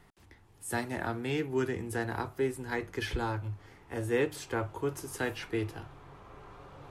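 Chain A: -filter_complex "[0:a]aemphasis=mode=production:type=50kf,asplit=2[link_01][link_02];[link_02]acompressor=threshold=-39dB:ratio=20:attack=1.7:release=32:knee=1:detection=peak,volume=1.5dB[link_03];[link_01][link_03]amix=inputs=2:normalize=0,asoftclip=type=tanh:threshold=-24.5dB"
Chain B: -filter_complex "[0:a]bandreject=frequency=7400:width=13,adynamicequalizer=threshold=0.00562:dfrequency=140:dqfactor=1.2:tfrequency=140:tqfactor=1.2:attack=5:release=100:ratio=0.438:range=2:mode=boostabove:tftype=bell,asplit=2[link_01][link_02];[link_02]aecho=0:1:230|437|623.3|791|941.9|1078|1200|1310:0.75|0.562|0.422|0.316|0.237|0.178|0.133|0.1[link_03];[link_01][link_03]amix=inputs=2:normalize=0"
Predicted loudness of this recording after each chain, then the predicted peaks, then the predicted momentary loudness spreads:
−32.5, −30.5 LKFS; −24.5, −15.5 dBFS; 13, 8 LU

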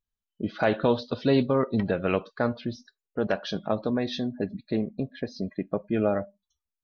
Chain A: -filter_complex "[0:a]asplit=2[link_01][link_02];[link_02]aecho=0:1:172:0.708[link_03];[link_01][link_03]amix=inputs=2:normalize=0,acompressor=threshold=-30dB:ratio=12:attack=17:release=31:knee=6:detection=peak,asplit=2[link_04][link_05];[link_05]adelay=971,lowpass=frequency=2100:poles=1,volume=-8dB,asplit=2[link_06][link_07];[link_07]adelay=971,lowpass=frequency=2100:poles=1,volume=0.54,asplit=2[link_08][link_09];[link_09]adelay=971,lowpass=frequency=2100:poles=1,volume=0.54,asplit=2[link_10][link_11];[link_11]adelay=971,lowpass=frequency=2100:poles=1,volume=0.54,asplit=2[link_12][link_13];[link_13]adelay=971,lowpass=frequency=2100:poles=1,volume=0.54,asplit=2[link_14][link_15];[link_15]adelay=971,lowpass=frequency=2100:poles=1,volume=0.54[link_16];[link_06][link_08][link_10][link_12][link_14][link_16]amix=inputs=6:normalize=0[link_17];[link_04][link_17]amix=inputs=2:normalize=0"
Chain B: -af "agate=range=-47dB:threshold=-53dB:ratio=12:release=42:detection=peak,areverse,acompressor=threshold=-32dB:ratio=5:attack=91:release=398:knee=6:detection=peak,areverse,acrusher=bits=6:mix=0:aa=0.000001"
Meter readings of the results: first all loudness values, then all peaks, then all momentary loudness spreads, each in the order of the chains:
−31.5, −33.5 LKFS; −16.0, −16.0 dBFS; 5, 6 LU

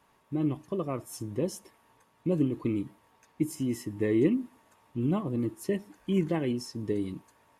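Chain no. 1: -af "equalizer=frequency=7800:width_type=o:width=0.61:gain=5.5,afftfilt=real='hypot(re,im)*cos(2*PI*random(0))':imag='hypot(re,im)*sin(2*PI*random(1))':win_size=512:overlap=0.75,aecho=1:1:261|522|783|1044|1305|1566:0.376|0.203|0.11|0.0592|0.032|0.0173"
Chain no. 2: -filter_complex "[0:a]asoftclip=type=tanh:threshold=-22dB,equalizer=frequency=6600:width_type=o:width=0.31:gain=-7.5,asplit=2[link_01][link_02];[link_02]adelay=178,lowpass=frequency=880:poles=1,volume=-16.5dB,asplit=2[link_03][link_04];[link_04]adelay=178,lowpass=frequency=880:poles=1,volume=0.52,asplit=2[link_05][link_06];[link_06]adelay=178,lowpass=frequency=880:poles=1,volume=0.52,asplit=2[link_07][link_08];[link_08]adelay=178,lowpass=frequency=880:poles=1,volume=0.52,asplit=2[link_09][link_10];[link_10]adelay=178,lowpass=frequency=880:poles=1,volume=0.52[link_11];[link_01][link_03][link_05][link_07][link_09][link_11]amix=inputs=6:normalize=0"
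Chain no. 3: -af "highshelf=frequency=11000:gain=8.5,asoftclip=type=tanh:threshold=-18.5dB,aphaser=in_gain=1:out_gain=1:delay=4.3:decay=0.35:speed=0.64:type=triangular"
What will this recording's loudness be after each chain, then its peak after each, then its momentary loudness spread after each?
−37.0, −33.0, −31.5 LKFS; −18.0, −21.0, −17.0 dBFS; 10, 12, 11 LU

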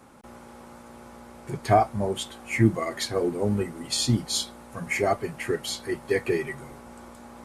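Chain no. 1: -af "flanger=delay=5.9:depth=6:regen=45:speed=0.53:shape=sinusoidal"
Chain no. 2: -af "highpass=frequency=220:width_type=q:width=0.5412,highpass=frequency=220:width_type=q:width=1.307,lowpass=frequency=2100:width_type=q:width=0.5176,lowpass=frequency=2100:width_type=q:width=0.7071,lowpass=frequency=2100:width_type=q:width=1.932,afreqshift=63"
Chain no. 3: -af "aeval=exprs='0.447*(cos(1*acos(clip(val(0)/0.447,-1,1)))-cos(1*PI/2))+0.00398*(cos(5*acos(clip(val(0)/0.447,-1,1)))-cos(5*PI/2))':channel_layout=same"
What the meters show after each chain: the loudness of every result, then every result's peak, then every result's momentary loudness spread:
−31.0, −28.5, −26.5 LKFS; −12.0, −8.0, −7.0 dBFS; 23, 23, 23 LU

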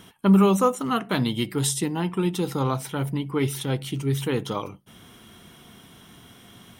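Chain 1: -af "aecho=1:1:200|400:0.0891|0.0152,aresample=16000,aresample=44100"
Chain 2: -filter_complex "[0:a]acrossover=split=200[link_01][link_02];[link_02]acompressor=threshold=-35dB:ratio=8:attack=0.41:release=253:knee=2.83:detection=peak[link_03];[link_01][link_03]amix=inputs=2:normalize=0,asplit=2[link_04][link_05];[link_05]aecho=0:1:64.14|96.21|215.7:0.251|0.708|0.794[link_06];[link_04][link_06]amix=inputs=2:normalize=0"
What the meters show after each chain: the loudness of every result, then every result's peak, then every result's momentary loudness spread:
−24.5, −27.5 LKFS; −8.5, −12.5 dBFS; 10, 21 LU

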